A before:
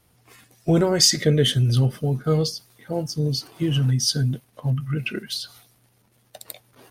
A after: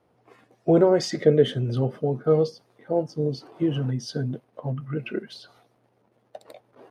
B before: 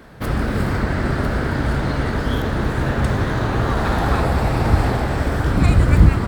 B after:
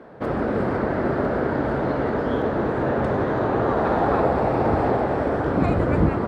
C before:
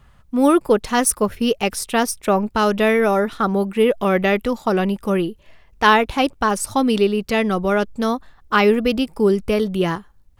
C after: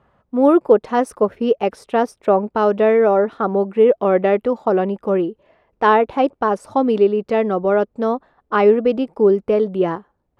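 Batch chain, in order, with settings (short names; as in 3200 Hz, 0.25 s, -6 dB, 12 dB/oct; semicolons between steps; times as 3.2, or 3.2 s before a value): band-pass 520 Hz, Q 1; gain +4.5 dB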